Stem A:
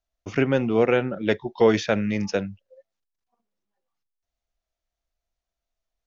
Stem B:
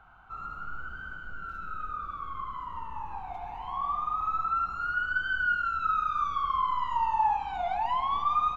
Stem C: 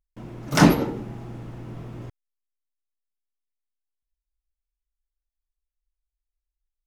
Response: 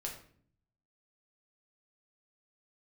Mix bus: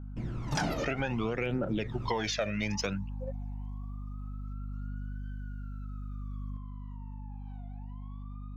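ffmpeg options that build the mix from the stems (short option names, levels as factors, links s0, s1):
-filter_complex "[0:a]highshelf=f=11000:g=3.5,aeval=exprs='val(0)+0.00251*(sin(2*PI*50*n/s)+sin(2*PI*2*50*n/s)/2+sin(2*PI*3*50*n/s)/3+sin(2*PI*4*50*n/s)/4+sin(2*PI*5*50*n/s)/5)':c=same,lowshelf=f=460:g=-5,adelay=500,volume=1.33[s0];[1:a]acompressor=threshold=0.0126:ratio=2.5,alimiter=level_in=4.22:limit=0.0631:level=0:latency=1:release=316,volume=0.237,volume=0.15[s1];[2:a]lowpass=6800,volume=0.708[s2];[s0][s2]amix=inputs=2:normalize=0,aphaser=in_gain=1:out_gain=1:delay=1.7:decay=0.7:speed=0.61:type=triangular,alimiter=limit=0.224:level=0:latency=1:release=56,volume=1[s3];[s1][s3]amix=inputs=2:normalize=0,aeval=exprs='val(0)+0.01*(sin(2*PI*50*n/s)+sin(2*PI*2*50*n/s)/2+sin(2*PI*3*50*n/s)/3+sin(2*PI*4*50*n/s)/4+sin(2*PI*5*50*n/s)/5)':c=same,acompressor=threshold=0.0398:ratio=6"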